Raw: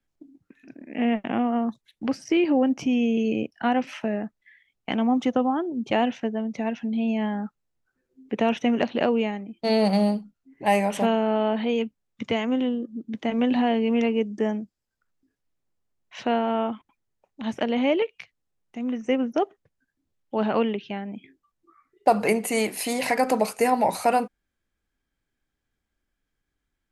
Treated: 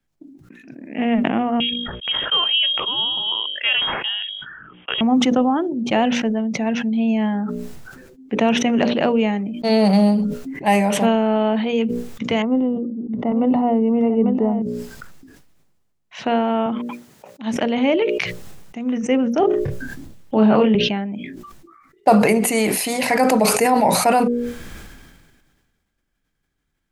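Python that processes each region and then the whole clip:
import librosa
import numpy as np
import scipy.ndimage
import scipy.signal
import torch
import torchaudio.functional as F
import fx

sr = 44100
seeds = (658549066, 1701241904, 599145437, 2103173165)

y = fx.chain(x, sr, fx.highpass(hz=280.0, slope=12),
    fx.hum_notches(base_hz=50, count=9),
    fx.freq_invert(carrier_hz=3500), at=(1.6, 5.01))
y = fx.chain(y, sr, fx.savgol(points=65),
    fx.echo_single(ms=846, db=-10.5), at=(12.42, 14.62))
y = fx.chain(y, sr, fx.highpass(hz=160.0, slope=12),
    fx.upward_expand(threshold_db=-38.0, expansion=1.5), at=(16.66, 17.56))
y = fx.chain(y, sr, fx.tilt_shelf(db=3.0, hz=740.0),
    fx.doubler(ms=28.0, db=-3),
    fx.band_squash(depth_pct=40), at=(19.4, 20.75))
y = fx.peak_eq(y, sr, hz=160.0, db=5.0, octaves=0.88)
y = fx.hum_notches(y, sr, base_hz=60, count=10)
y = fx.sustainer(y, sr, db_per_s=35.0)
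y = y * librosa.db_to_amplitude(4.0)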